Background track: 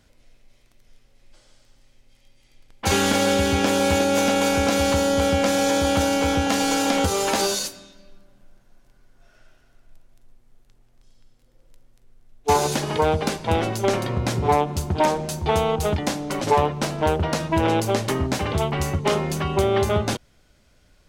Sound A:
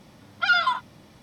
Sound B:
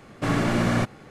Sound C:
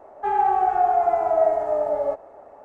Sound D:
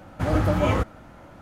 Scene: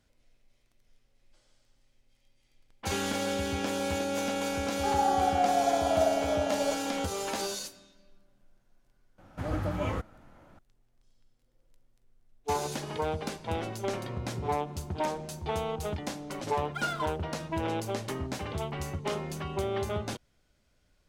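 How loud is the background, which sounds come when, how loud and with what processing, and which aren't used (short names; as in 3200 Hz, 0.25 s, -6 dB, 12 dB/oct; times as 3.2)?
background track -11.5 dB
4.6 add C -7.5 dB
9.18 add D -10 dB
16.33 add A -12 dB + median filter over 9 samples
not used: B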